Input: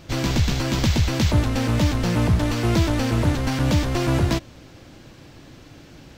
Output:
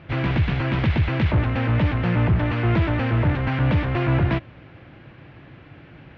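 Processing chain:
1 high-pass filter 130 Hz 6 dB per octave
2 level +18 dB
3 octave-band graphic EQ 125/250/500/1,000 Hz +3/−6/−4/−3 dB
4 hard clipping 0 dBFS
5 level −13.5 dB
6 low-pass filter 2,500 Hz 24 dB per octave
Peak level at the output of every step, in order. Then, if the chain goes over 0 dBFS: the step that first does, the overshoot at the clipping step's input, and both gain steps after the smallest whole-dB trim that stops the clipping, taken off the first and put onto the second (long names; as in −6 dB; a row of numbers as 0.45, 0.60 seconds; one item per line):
−9.0, +9.0, +7.0, 0.0, −13.5, −12.5 dBFS
step 2, 7.0 dB
step 2 +11 dB, step 5 −6.5 dB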